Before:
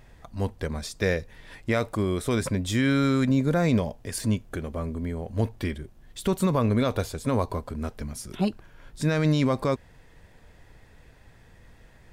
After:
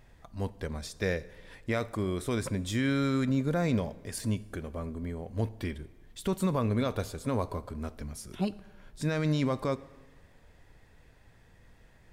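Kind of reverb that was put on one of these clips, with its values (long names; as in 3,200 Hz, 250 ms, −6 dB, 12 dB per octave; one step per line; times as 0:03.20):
dense smooth reverb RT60 1.4 s, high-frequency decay 0.75×, DRR 17 dB
level −5.5 dB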